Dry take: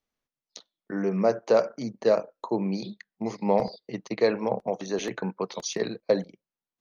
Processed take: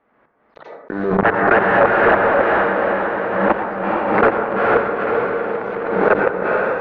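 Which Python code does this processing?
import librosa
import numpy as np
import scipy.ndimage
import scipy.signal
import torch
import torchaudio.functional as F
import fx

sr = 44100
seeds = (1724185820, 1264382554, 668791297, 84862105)

y = fx.reverse_delay_fb(x, sr, ms=563, feedback_pct=67, wet_db=-4)
y = (np.mod(10.0 ** (15.5 / 20.0) * y + 1.0, 2.0) - 1.0) / 10.0 ** (15.5 / 20.0)
y = fx.level_steps(y, sr, step_db=22)
y = fx.highpass(y, sr, hz=110.0, slope=6)
y = fx.low_shelf(y, sr, hz=190.0, db=-11.0)
y = fx.hum_notches(y, sr, base_hz=50, count=3)
y = fx.echo_diffused(y, sr, ms=453, feedback_pct=51, wet_db=-3)
y = fx.rev_plate(y, sr, seeds[0], rt60_s=1.0, hf_ratio=0.3, predelay_ms=80, drr_db=11.0)
y = fx.leveller(y, sr, passes=3)
y = scipy.signal.sosfilt(scipy.signal.butter(4, 1700.0, 'lowpass', fs=sr, output='sos'), y)
y = fx.pre_swell(y, sr, db_per_s=45.0)
y = F.gain(torch.from_numpy(y), 6.5).numpy()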